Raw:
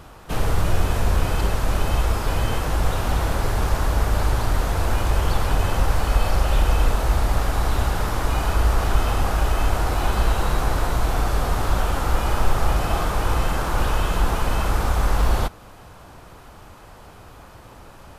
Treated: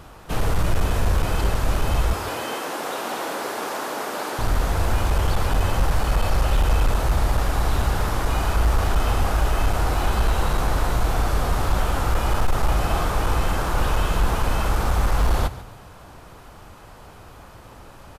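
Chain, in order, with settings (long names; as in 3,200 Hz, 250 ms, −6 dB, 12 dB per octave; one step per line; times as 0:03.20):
0:02.13–0:04.39: high-pass filter 260 Hz 24 dB per octave
gain into a clipping stage and back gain 13 dB
echo with shifted repeats 141 ms, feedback 30%, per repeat +32 Hz, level −16 dB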